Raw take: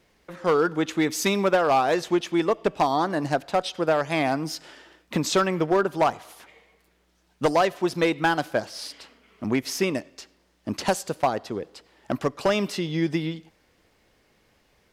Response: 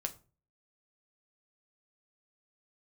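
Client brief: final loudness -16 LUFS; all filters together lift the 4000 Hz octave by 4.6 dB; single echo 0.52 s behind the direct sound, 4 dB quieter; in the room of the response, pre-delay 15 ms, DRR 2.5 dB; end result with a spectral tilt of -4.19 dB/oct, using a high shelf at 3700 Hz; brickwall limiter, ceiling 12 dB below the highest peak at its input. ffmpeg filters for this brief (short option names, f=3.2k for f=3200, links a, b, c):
-filter_complex "[0:a]highshelf=f=3.7k:g=-3.5,equalizer=f=4k:t=o:g=8,alimiter=limit=-19.5dB:level=0:latency=1,aecho=1:1:520:0.631,asplit=2[a][b];[1:a]atrim=start_sample=2205,adelay=15[c];[b][c]afir=irnorm=-1:irlink=0,volume=-2.5dB[d];[a][d]amix=inputs=2:normalize=0,volume=10.5dB"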